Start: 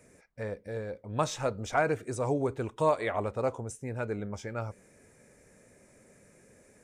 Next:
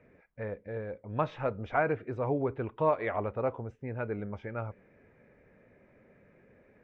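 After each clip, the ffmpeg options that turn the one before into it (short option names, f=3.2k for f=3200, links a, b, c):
-af "lowpass=f=2.7k:w=0.5412,lowpass=f=2.7k:w=1.3066,volume=-1dB"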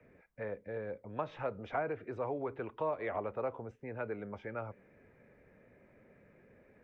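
-filter_complex "[0:a]acrossover=split=120|750[a][b][c];[a]acompressor=threshold=-55dB:ratio=4[d];[b]acompressor=threshold=-32dB:ratio=4[e];[c]acompressor=threshold=-38dB:ratio=4[f];[d][e][f]amix=inputs=3:normalize=0,acrossover=split=320|750[g][h][i];[g]alimiter=level_in=17dB:limit=-24dB:level=0:latency=1,volume=-17dB[j];[j][h][i]amix=inputs=3:normalize=0,volume=-1.5dB"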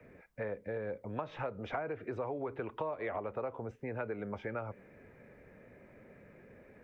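-af "acompressor=threshold=-40dB:ratio=5,volume=5.5dB"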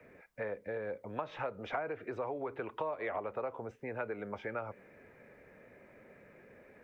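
-af "lowshelf=f=270:g=-9,volume=2dB"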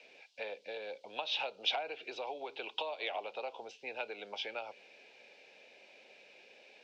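-af "aexciter=amount=14.4:drive=8.6:freq=3k,highpass=440,equalizer=f=790:t=q:w=4:g=7,equalizer=f=1.2k:t=q:w=4:g=-9,equalizer=f=2.7k:t=q:w=4:g=5,lowpass=f=4.4k:w=0.5412,lowpass=f=4.4k:w=1.3066,volume=-3dB"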